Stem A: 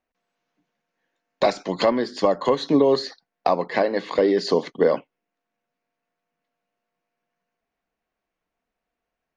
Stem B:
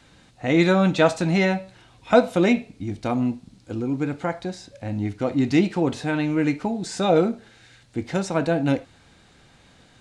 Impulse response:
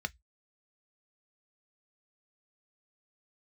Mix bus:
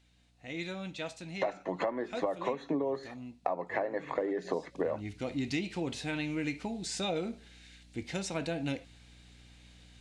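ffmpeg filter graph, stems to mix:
-filter_complex "[0:a]equalizer=frequency=4900:width=3.1:gain=-13,volume=-7.5dB,asplit=2[link_01][link_02];[link_02]volume=-3.5dB[link_03];[1:a]highshelf=frequency=1800:width_type=q:width=1.5:gain=7,aeval=exprs='val(0)+0.00562*(sin(2*PI*60*n/s)+sin(2*PI*2*60*n/s)/2+sin(2*PI*3*60*n/s)/3+sin(2*PI*4*60*n/s)/4+sin(2*PI*5*60*n/s)/5)':channel_layout=same,volume=-11dB,afade=type=in:start_time=4.47:duration=0.47:silence=0.281838[link_04];[2:a]atrim=start_sample=2205[link_05];[link_03][link_05]afir=irnorm=-1:irlink=0[link_06];[link_01][link_04][link_06]amix=inputs=3:normalize=0,acompressor=threshold=-29dB:ratio=6"

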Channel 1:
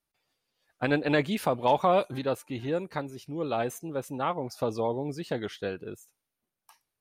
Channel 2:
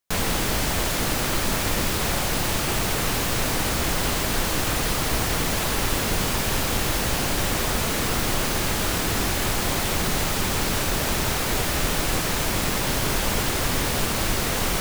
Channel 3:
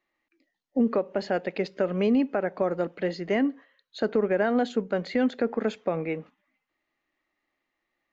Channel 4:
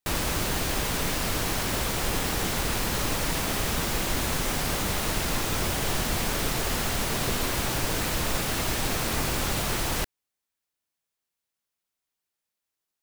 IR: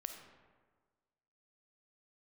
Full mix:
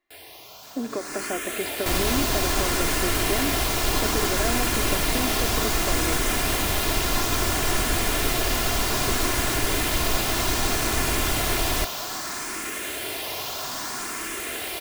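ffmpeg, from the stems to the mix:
-filter_complex "[0:a]volume=-18dB[link_01];[1:a]highpass=frequency=500:poles=1,asplit=2[link_02][link_03];[link_03]afreqshift=0.62[link_04];[link_02][link_04]amix=inputs=2:normalize=1,volume=-3.5dB,afade=type=in:start_time=0.89:duration=0.37:silence=0.237137,asplit=2[link_05][link_06];[link_06]volume=-7dB[link_07];[2:a]acompressor=threshold=-25dB:ratio=6,volume=-1dB[link_08];[3:a]adelay=1800,volume=2dB[link_09];[link_07]aecho=0:1:524:1[link_10];[link_01][link_05][link_08][link_09][link_10]amix=inputs=5:normalize=0,aecho=1:1:2.9:0.46"

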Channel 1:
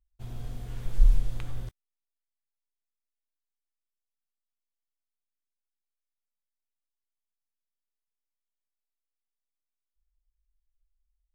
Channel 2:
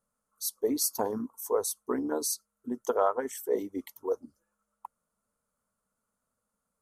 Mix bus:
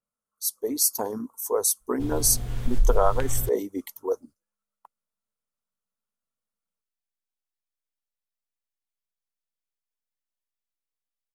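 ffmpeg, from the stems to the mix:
ffmpeg -i stem1.wav -i stem2.wav -filter_complex "[0:a]acompressor=threshold=-22dB:ratio=5,adelay=1800,volume=2dB[link_01];[1:a]adynamicequalizer=threshold=0.00355:dfrequency=4300:dqfactor=0.7:tfrequency=4300:tqfactor=0.7:attack=5:release=100:ratio=0.375:range=4:mode=boostabove:tftype=highshelf,volume=-1dB,afade=type=out:start_time=4.1:duration=0.25:silence=0.316228[link_02];[link_01][link_02]amix=inputs=2:normalize=0,agate=range=-9dB:threshold=-53dB:ratio=16:detection=peak,dynaudnorm=framelen=230:gausssize=11:maxgain=5dB" out.wav

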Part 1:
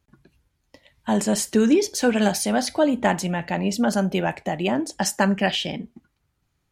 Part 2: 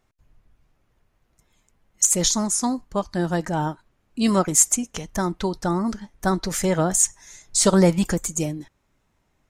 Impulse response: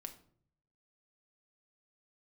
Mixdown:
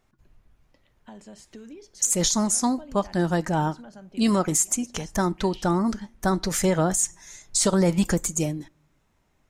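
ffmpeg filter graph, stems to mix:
-filter_complex "[0:a]lowpass=7400,acompressor=threshold=-31dB:ratio=3,volume=-14dB[link_01];[1:a]volume=-0.5dB,asplit=3[link_02][link_03][link_04];[link_03]volume=-14.5dB[link_05];[link_04]apad=whole_len=295993[link_06];[link_01][link_06]sidechaincompress=threshold=-23dB:ratio=8:attack=16:release=197[link_07];[2:a]atrim=start_sample=2205[link_08];[link_05][link_08]afir=irnorm=-1:irlink=0[link_09];[link_07][link_02][link_09]amix=inputs=3:normalize=0,alimiter=limit=-11dB:level=0:latency=1:release=112"

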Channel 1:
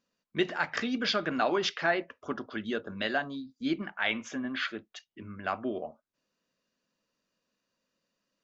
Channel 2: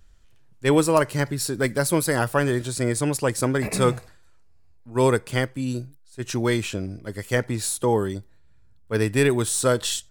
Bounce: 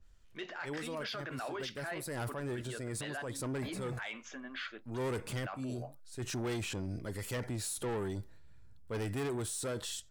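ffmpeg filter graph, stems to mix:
ffmpeg -i stem1.wav -i stem2.wav -filter_complex "[0:a]equalizer=frequency=130:width_type=o:width=2.7:gain=-11.5,volume=-5.5dB,asplit=2[link_01][link_02];[1:a]dynaudnorm=framelen=120:gausssize=13:maxgain=11.5dB,adynamicequalizer=threshold=0.0316:dfrequency=1700:dqfactor=0.7:tfrequency=1700:tqfactor=0.7:attack=5:release=100:ratio=0.375:range=2:mode=cutabove:tftype=highshelf,volume=-7.5dB[link_03];[link_02]apad=whole_len=445510[link_04];[link_03][link_04]sidechaincompress=threshold=-50dB:ratio=8:attack=11:release=202[link_05];[link_01][link_05]amix=inputs=2:normalize=0,asoftclip=type=tanh:threshold=-24.5dB,alimiter=level_in=8.5dB:limit=-24dB:level=0:latency=1:release=10,volume=-8.5dB" out.wav

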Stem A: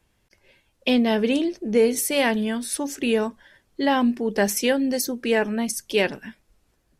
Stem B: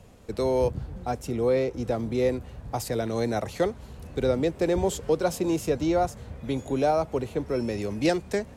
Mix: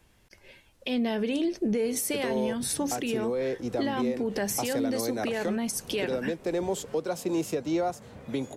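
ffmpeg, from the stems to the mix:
ffmpeg -i stem1.wav -i stem2.wav -filter_complex "[0:a]acompressor=threshold=-26dB:ratio=6,alimiter=level_in=0.5dB:limit=-24dB:level=0:latency=1:release=112,volume=-0.5dB,acontrast=88,volume=-2.5dB[link_01];[1:a]highpass=160,alimiter=limit=-21.5dB:level=0:latency=1:release=450,adelay=1850,volume=2dB[link_02];[link_01][link_02]amix=inputs=2:normalize=0,alimiter=limit=-19dB:level=0:latency=1:release=255" out.wav

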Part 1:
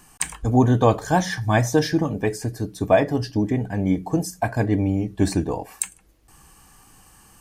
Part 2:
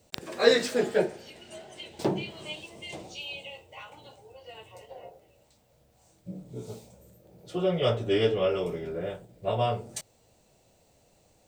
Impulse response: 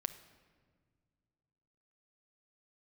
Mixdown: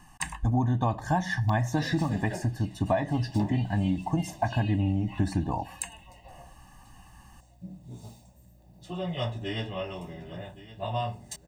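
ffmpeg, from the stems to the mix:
-filter_complex "[0:a]highshelf=frequency=4800:gain=-11,volume=-4dB,asplit=2[link_01][link_02];[link_02]volume=-17dB[link_03];[1:a]dynaudnorm=framelen=560:gausssize=3:maxgain=6.5dB,aeval=exprs='val(0)+0.00282*(sin(2*PI*60*n/s)+sin(2*PI*2*60*n/s)/2+sin(2*PI*3*60*n/s)/3+sin(2*PI*4*60*n/s)/4+sin(2*PI*5*60*n/s)/5)':channel_layout=same,adelay=1350,volume=-12dB,asplit=2[link_04][link_05];[link_05]volume=-16.5dB[link_06];[2:a]atrim=start_sample=2205[link_07];[link_03][link_07]afir=irnorm=-1:irlink=0[link_08];[link_06]aecho=0:1:1119:1[link_09];[link_01][link_04][link_08][link_09]amix=inputs=4:normalize=0,aecho=1:1:1.1:0.81,acompressor=threshold=-22dB:ratio=6"

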